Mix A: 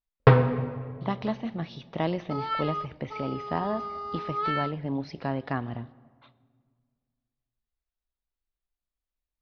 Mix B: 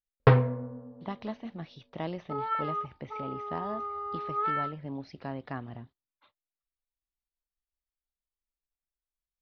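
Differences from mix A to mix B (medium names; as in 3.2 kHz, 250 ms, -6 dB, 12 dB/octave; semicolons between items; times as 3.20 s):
speech -6.5 dB; second sound: add Butterworth band-pass 770 Hz, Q 0.51; reverb: off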